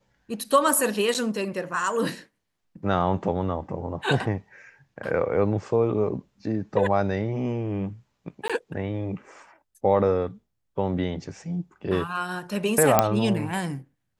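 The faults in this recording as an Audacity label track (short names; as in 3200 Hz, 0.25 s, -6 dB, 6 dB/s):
1.140000	1.150000	gap 7.1 ms
8.480000	8.500000	gap 16 ms
12.990000	12.990000	pop -2 dBFS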